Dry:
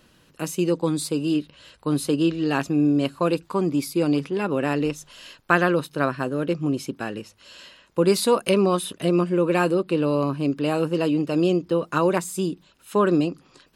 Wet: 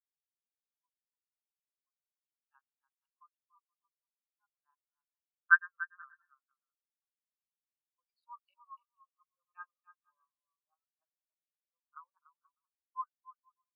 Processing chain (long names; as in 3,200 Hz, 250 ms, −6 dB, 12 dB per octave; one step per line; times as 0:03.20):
adaptive Wiener filter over 25 samples
high-pass filter 1,000 Hz 24 dB per octave
on a send: bouncing-ball delay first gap 290 ms, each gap 0.65×, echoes 5
on the sum: every bin expanded away from the loudest bin 4 to 1
level −3.5 dB